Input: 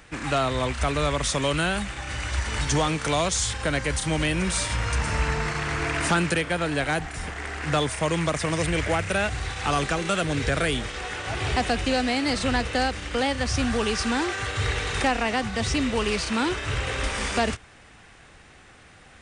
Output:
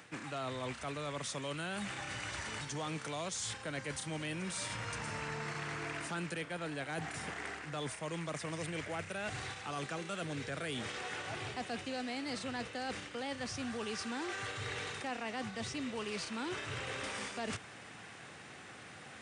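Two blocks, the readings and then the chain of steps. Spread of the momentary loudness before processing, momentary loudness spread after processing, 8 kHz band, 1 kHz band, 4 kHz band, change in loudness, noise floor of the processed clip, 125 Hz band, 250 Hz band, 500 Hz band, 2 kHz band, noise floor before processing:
5 LU, 3 LU, -13.5 dB, -14.5 dB, -13.5 dB, -14.5 dB, -52 dBFS, -16.5 dB, -14.5 dB, -14.5 dB, -13.5 dB, -51 dBFS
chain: HPF 110 Hz 24 dB/oct; reverse; compressor 5:1, threshold -39 dBFS, peak gain reduction 19 dB; reverse

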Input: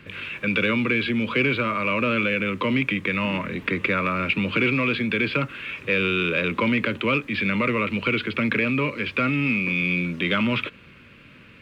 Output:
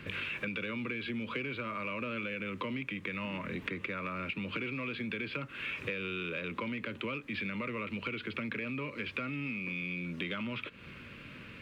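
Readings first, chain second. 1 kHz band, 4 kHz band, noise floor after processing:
-13.5 dB, -13.0 dB, -50 dBFS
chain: compressor 12:1, threshold -34 dBFS, peak gain reduction 17.5 dB

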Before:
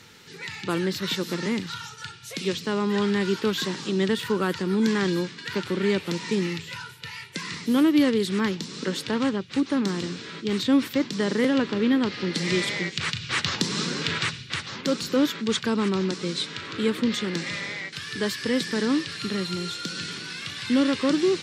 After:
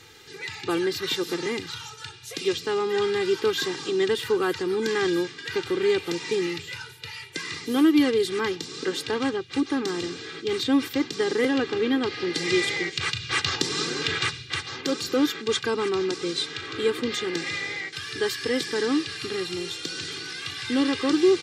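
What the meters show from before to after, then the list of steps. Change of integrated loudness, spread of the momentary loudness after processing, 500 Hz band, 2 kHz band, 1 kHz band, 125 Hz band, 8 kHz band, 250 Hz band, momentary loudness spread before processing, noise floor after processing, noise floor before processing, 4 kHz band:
0.0 dB, 9 LU, +2.5 dB, +1.0 dB, +0.5 dB, -7.5 dB, +0.5 dB, -2.5 dB, 10 LU, -43 dBFS, -43 dBFS, +1.0 dB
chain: comb 2.5 ms, depth 82%; gain -1.5 dB

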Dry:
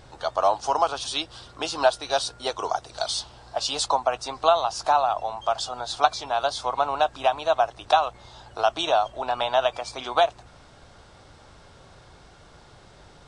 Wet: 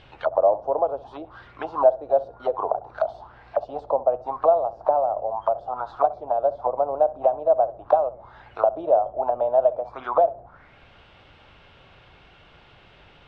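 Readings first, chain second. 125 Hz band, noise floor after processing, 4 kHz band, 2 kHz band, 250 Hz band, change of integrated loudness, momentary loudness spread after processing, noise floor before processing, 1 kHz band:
n/a, -53 dBFS, under -25 dB, under -10 dB, -0.5 dB, +1.5 dB, 10 LU, -51 dBFS, -1.5 dB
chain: tape echo 65 ms, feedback 32%, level -16 dB, low-pass 2300 Hz; envelope low-pass 560–3100 Hz down, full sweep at -23 dBFS; gain -3 dB

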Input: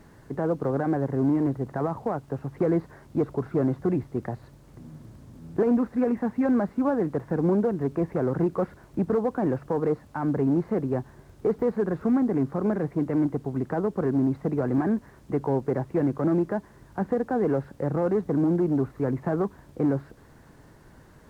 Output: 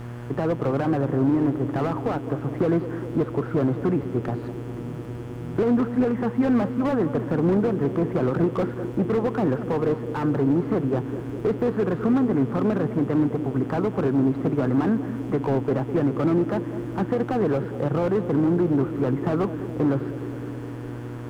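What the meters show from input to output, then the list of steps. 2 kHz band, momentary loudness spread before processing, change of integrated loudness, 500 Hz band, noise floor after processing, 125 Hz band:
+4.5 dB, 8 LU, +2.5 dB, +2.0 dB, -34 dBFS, +4.0 dB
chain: bell 1300 Hz +7.5 dB 0.63 oct; in parallel at 0 dB: compressor, threshold -32 dBFS, peak gain reduction 13.5 dB; on the sum: buzz 120 Hz, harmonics 29, -35 dBFS -8 dB/oct; on a send: narrowing echo 0.206 s, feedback 85%, band-pass 310 Hz, level -12 dB; on the sum: slew limiter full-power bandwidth 52 Hz

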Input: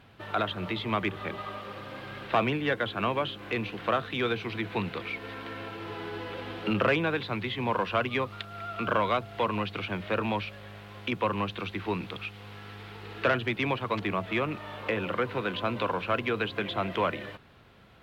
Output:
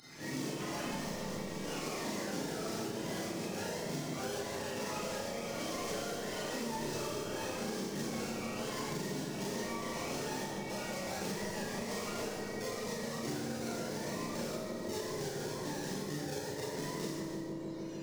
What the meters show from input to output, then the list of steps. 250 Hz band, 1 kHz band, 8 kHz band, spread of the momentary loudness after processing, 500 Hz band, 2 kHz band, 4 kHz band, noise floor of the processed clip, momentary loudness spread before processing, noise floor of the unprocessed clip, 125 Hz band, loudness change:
-5.0 dB, -11.0 dB, n/a, 2 LU, -7.0 dB, -11.0 dB, -5.5 dB, -41 dBFS, 12 LU, -47 dBFS, -7.5 dB, -8.0 dB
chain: spectrum mirrored in octaves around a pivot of 440 Hz; HPF 240 Hz 12 dB/oct; in parallel at -7 dB: decimation with a swept rate 37×, swing 60% 2.4 Hz; on the sum: echoes that change speed 84 ms, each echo +3 st, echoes 3; high shelf 3600 Hz +10 dB; on a send: dark delay 0.153 s, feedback 69%, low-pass 790 Hz, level -5.5 dB; on the sum: Schroeder reverb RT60 0.81 s, combs from 27 ms, DRR -7 dB; compressor 6:1, threshold -34 dBFS, peak gain reduction 19 dB; bell 5600 Hz +11.5 dB 1.4 oct; gain -3.5 dB

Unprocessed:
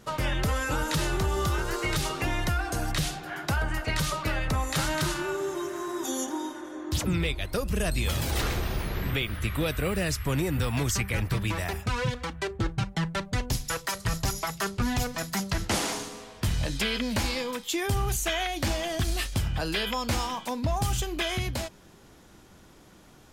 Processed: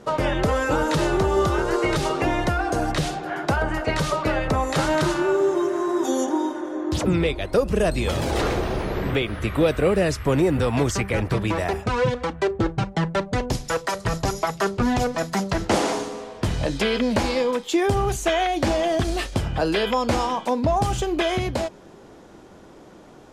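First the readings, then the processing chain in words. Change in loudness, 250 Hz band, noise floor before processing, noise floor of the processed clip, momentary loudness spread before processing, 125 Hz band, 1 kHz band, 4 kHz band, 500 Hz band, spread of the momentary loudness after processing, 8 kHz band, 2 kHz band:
+6.0 dB, +8.5 dB, -53 dBFS, -46 dBFS, 4 LU, +3.0 dB, +8.0 dB, +1.0 dB, +11.5 dB, 5 LU, -1.0 dB, +3.5 dB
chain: LPF 9400 Hz 12 dB/oct; bell 490 Hz +12 dB 2.7 oct

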